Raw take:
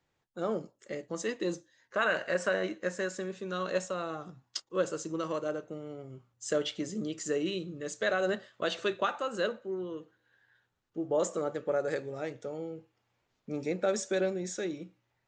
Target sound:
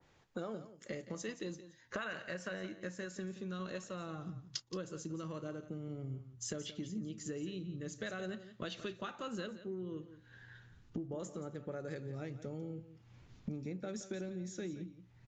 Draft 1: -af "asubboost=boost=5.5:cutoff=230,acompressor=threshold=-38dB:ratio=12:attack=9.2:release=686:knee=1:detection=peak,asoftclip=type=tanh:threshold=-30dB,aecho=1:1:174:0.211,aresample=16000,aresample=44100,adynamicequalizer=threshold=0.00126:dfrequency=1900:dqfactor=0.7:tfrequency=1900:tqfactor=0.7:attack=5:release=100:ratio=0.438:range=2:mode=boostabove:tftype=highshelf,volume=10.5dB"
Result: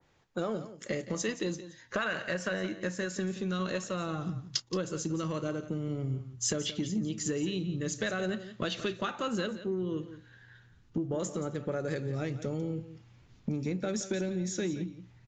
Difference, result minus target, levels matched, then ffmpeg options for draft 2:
downward compressor: peak gain reduction −9.5 dB
-af "asubboost=boost=5.5:cutoff=230,acompressor=threshold=-48.5dB:ratio=12:attack=9.2:release=686:knee=1:detection=peak,asoftclip=type=tanh:threshold=-30dB,aecho=1:1:174:0.211,aresample=16000,aresample=44100,adynamicequalizer=threshold=0.00126:dfrequency=1900:dqfactor=0.7:tfrequency=1900:tqfactor=0.7:attack=5:release=100:ratio=0.438:range=2:mode=boostabove:tftype=highshelf,volume=10.5dB"

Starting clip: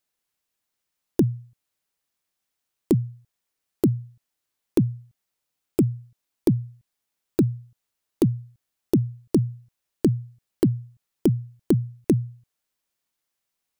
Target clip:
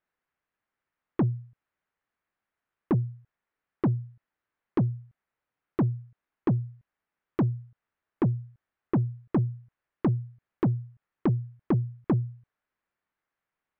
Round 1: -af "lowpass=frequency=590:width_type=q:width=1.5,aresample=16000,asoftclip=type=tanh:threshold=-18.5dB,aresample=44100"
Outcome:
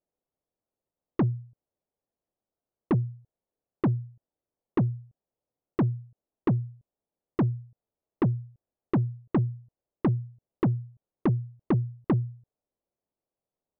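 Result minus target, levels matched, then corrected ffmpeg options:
2,000 Hz band +2.5 dB
-af "lowpass=frequency=1700:width_type=q:width=1.5,aresample=16000,asoftclip=type=tanh:threshold=-18.5dB,aresample=44100"

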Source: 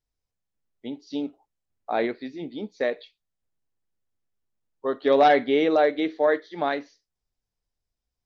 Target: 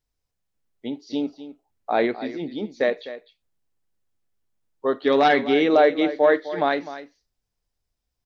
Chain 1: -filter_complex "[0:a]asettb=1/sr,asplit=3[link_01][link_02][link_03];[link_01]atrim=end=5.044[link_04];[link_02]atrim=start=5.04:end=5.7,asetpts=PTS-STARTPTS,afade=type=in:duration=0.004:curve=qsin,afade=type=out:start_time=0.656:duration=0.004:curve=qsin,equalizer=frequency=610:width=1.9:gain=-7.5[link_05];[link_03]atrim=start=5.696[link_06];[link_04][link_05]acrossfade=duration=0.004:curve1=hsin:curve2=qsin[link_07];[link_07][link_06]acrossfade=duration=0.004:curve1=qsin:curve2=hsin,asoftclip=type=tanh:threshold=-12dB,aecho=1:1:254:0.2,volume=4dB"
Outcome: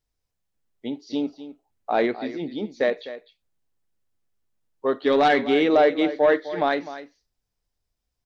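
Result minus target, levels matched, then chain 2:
soft clipping: distortion +18 dB
-filter_complex "[0:a]asettb=1/sr,asplit=3[link_01][link_02][link_03];[link_01]atrim=end=5.044[link_04];[link_02]atrim=start=5.04:end=5.7,asetpts=PTS-STARTPTS,afade=type=in:duration=0.004:curve=qsin,afade=type=out:start_time=0.656:duration=0.004:curve=qsin,equalizer=frequency=610:width=1.9:gain=-7.5[link_05];[link_03]atrim=start=5.696[link_06];[link_04][link_05]acrossfade=duration=0.004:curve1=hsin:curve2=qsin[link_07];[link_07][link_06]acrossfade=duration=0.004:curve1=qsin:curve2=hsin,asoftclip=type=tanh:threshold=-2dB,aecho=1:1:254:0.2,volume=4dB"

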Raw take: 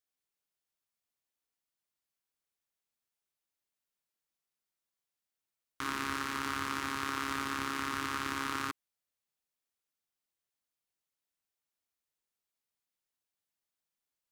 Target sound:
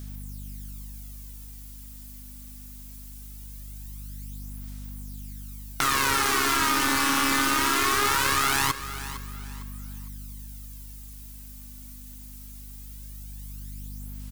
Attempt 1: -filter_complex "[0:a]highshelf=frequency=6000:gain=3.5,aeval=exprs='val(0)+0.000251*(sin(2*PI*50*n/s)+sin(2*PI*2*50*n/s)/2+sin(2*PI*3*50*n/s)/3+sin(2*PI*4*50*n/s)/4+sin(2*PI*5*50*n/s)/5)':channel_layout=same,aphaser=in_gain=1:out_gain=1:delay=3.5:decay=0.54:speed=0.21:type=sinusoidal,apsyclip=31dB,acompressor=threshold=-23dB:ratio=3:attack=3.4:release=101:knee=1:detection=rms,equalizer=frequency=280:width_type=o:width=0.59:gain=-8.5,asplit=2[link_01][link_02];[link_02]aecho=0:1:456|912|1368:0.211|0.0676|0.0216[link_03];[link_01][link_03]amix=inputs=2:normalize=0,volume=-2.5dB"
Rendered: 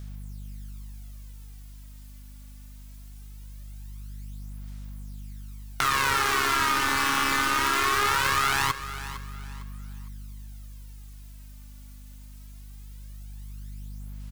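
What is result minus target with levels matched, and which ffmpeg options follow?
250 Hz band −5.0 dB; 8,000 Hz band −3.5 dB
-filter_complex "[0:a]highshelf=frequency=6000:gain=15,aeval=exprs='val(0)+0.000251*(sin(2*PI*50*n/s)+sin(2*PI*2*50*n/s)/2+sin(2*PI*3*50*n/s)/3+sin(2*PI*4*50*n/s)/4+sin(2*PI*5*50*n/s)/5)':channel_layout=same,aphaser=in_gain=1:out_gain=1:delay=3.5:decay=0.54:speed=0.21:type=sinusoidal,apsyclip=31dB,acompressor=threshold=-23dB:ratio=3:attack=3.4:release=101:knee=1:detection=rms,asplit=2[link_01][link_02];[link_02]aecho=0:1:456|912|1368:0.211|0.0676|0.0216[link_03];[link_01][link_03]amix=inputs=2:normalize=0,volume=-2.5dB"

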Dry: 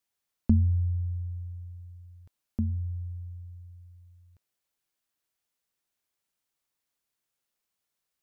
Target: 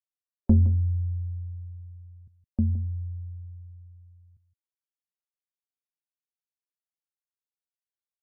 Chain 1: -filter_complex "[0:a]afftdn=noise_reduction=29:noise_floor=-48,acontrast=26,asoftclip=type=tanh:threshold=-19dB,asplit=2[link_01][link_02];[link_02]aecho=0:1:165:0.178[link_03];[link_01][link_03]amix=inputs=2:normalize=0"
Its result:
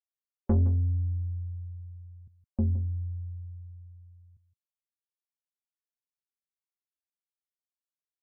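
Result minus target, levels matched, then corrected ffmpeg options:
soft clipping: distortion +11 dB
-filter_complex "[0:a]afftdn=noise_reduction=29:noise_floor=-48,acontrast=26,asoftclip=type=tanh:threshold=-9dB,asplit=2[link_01][link_02];[link_02]aecho=0:1:165:0.178[link_03];[link_01][link_03]amix=inputs=2:normalize=0"

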